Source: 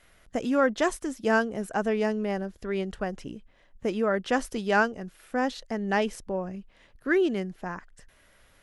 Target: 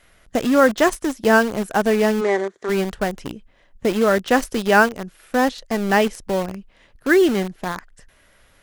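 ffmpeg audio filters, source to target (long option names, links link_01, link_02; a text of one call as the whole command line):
ffmpeg -i in.wav -filter_complex "[0:a]asplit=2[link_01][link_02];[link_02]acrusher=bits=4:mix=0:aa=0.000001,volume=-4.5dB[link_03];[link_01][link_03]amix=inputs=2:normalize=0,asplit=3[link_04][link_05][link_06];[link_04]afade=type=out:start_time=2.2:duration=0.02[link_07];[link_05]highpass=350,equalizer=frequency=390:width_type=q:width=4:gain=8,equalizer=frequency=1200:width_type=q:width=4:gain=4,equalizer=frequency=1900:width_type=q:width=4:gain=6,equalizer=frequency=2800:width_type=q:width=4:gain=-9,equalizer=frequency=5000:width_type=q:width=4:gain=-9,lowpass=frequency=7200:width=0.5412,lowpass=frequency=7200:width=1.3066,afade=type=in:start_time=2.2:duration=0.02,afade=type=out:start_time=2.68:duration=0.02[link_08];[link_06]afade=type=in:start_time=2.68:duration=0.02[link_09];[link_07][link_08][link_09]amix=inputs=3:normalize=0,volume=4.5dB" out.wav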